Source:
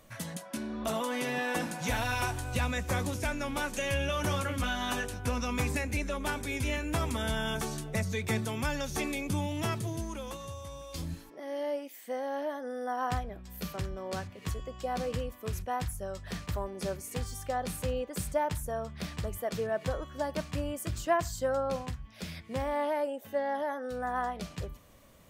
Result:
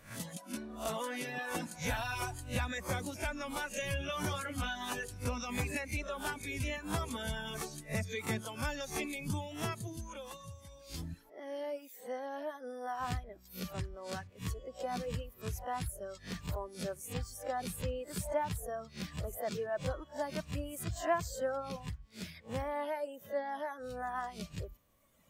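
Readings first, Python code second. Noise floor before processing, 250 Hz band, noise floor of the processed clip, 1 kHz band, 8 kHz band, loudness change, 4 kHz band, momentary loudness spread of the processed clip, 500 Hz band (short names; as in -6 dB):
-52 dBFS, -6.0 dB, -58 dBFS, -5.0 dB, -3.5 dB, -5.0 dB, -4.5 dB, 8 LU, -5.5 dB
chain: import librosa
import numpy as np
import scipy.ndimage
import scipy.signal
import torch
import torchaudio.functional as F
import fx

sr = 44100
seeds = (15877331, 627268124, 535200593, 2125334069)

y = fx.spec_swells(x, sr, rise_s=0.37)
y = fx.dereverb_blind(y, sr, rt60_s=1.6)
y = y * 10.0 ** (-4.0 / 20.0)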